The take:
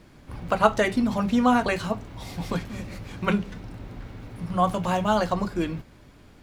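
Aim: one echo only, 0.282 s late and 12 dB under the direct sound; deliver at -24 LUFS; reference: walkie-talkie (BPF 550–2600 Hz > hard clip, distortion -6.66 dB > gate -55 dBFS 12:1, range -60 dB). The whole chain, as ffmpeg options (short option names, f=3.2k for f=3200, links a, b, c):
-af "highpass=550,lowpass=2.6k,aecho=1:1:282:0.251,asoftclip=type=hard:threshold=-23dB,agate=range=-60dB:threshold=-55dB:ratio=12,volume=7.5dB"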